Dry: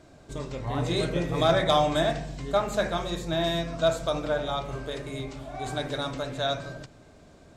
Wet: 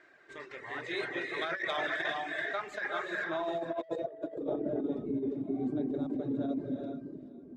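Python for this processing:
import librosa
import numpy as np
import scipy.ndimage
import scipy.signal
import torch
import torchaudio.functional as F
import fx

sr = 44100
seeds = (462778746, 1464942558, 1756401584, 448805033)

y = fx.filter_sweep_bandpass(x, sr, from_hz=1800.0, to_hz=240.0, start_s=2.89, end_s=4.65, q=5.7)
y = fx.rev_gated(y, sr, seeds[0], gate_ms=460, shape='rising', drr_db=2.5)
y = fx.dereverb_blind(y, sr, rt60_s=0.65)
y = 10.0 ** (-27.0 / 20.0) * np.tanh(y / 10.0 ** (-27.0 / 20.0))
y = fx.peak_eq(y, sr, hz=370.0, db=12.0, octaves=0.57)
y = y + 10.0 ** (-19.0 / 20.0) * np.pad(y, (int(470 * sr / 1000.0), 0))[:len(y)]
y = fx.over_compress(y, sr, threshold_db=-40.0, ratio=-0.5)
y = fx.dynamic_eq(y, sr, hz=1200.0, q=0.98, threshold_db=-53.0, ratio=4.0, max_db=-3)
y = F.gain(torch.from_numpy(y), 8.0).numpy()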